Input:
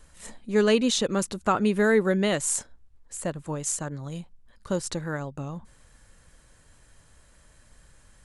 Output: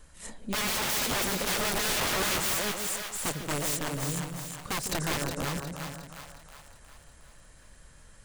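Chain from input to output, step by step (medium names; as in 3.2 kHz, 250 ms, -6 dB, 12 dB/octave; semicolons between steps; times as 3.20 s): chunks repeated in reverse 247 ms, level -9 dB; integer overflow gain 25 dB; two-band feedback delay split 610 Hz, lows 152 ms, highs 361 ms, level -5 dB; 4.89–5.36 s: three bands compressed up and down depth 70%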